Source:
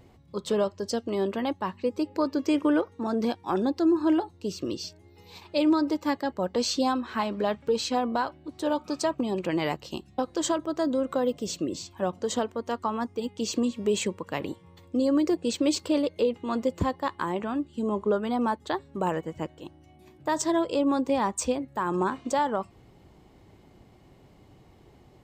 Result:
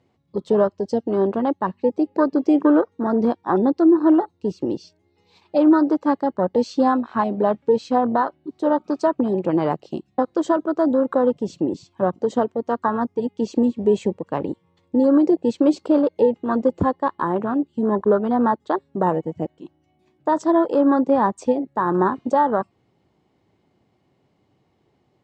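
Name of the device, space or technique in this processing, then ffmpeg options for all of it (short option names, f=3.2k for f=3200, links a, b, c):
over-cleaned archive recording: -af "highpass=110,lowpass=6.6k,afwtdn=0.0282,volume=8dB"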